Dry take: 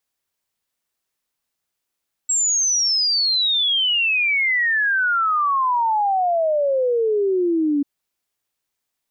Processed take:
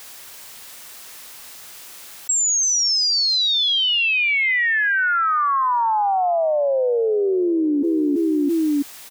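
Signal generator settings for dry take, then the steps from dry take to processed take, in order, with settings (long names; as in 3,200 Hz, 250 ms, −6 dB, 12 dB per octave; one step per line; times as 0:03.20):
exponential sine sweep 7,700 Hz → 280 Hz 5.54 s −16 dBFS
low-shelf EQ 440 Hz −7.5 dB
repeating echo 332 ms, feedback 36%, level −16.5 dB
envelope flattener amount 100%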